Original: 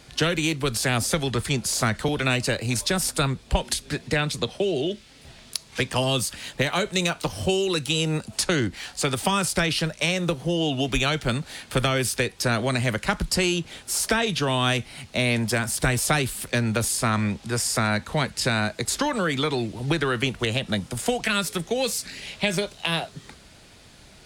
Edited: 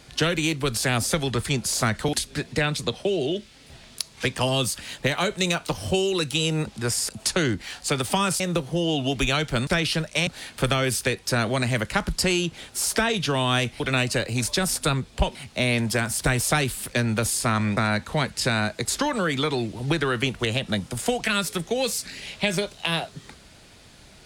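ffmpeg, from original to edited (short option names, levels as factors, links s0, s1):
-filter_complex "[0:a]asplit=10[s0][s1][s2][s3][s4][s5][s6][s7][s8][s9];[s0]atrim=end=2.132[s10];[s1]atrim=start=3.678:end=8.222[s11];[s2]atrim=start=17.348:end=17.772[s12];[s3]atrim=start=8.218:end=9.532[s13];[s4]atrim=start=10.128:end=11.402[s14];[s5]atrim=start=9.528:end=10.132[s15];[s6]atrim=start=11.398:end=14.932[s16];[s7]atrim=start=2.128:end=3.682[s17];[s8]atrim=start=14.928:end=17.352[s18];[s9]atrim=start=17.768[s19];[s10][s11]acrossfade=d=0.004:c1=hsin:c2=hsin[s20];[s20][s12]acrossfade=d=0.004:c1=hsin:c2=hsin[s21];[s21][s13]acrossfade=d=0.004:c1=hsin:c2=hsin[s22];[s22][s14]acrossfade=d=0.004:c1=hsin:c2=hsin[s23];[s23][s15]acrossfade=d=0.004:c1=hsin:c2=hsin[s24];[s24][s16]acrossfade=d=0.004:c1=hsin:c2=hsin[s25];[s25][s17]acrossfade=d=0.004:c1=hsin:c2=hsin[s26];[s26][s18]acrossfade=d=0.004:c1=hsin:c2=hsin[s27];[s27][s19]acrossfade=d=0.004:c1=hsin:c2=hsin"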